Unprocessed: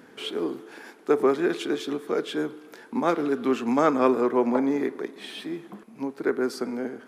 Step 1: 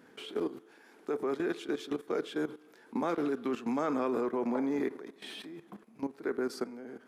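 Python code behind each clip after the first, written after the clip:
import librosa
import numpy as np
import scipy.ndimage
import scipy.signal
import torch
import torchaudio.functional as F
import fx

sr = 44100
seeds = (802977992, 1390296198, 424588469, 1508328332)

y = fx.level_steps(x, sr, step_db=14)
y = y * 10.0 ** (-2.5 / 20.0)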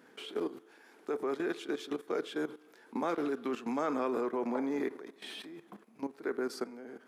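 y = fx.low_shelf(x, sr, hz=160.0, db=-10.0)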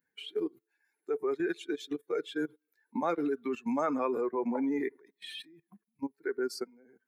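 y = fx.bin_expand(x, sr, power=2.0)
y = y * 10.0 ** (6.0 / 20.0)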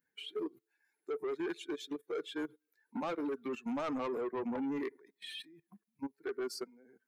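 y = 10.0 ** (-30.5 / 20.0) * np.tanh(x / 10.0 ** (-30.5 / 20.0))
y = y * 10.0 ** (-1.5 / 20.0)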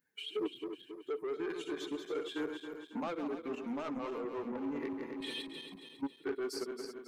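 y = fx.reverse_delay_fb(x, sr, ms=137, feedback_pct=70, wet_db=-7)
y = fx.rider(y, sr, range_db=4, speed_s=0.5)
y = fx.doppler_dist(y, sr, depth_ms=0.1)
y = y * 10.0 ** (-1.0 / 20.0)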